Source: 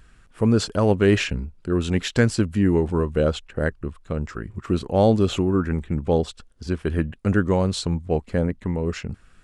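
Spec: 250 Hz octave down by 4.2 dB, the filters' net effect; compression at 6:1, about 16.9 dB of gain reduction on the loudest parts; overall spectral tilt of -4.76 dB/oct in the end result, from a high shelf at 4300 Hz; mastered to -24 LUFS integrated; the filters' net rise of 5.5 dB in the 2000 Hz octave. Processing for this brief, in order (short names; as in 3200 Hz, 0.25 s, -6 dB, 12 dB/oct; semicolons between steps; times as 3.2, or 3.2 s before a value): bell 250 Hz -6 dB; bell 2000 Hz +5.5 dB; high shelf 4300 Hz +9 dB; compressor 6:1, threshold -33 dBFS; gain +13 dB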